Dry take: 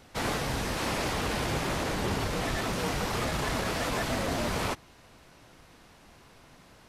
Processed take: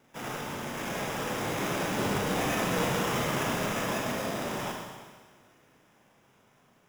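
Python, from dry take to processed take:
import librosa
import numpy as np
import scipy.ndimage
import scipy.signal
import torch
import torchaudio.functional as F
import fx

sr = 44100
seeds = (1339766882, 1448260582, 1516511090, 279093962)

y = fx.doppler_pass(x, sr, speed_mps=12, closest_m=13.0, pass_at_s=2.65)
y = scipy.signal.sosfilt(scipy.signal.butter(4, 110.0, 'highpass', fs=sr, output='sos'), y)
y = fx.sample_hold(y, sr, seeds[0], rate_hz=4300.0, jitter_pct=0)
y = fx.rev_schroeder(y, sr, rt60_s=1.5, comb_ms=30, drr_db=0.0)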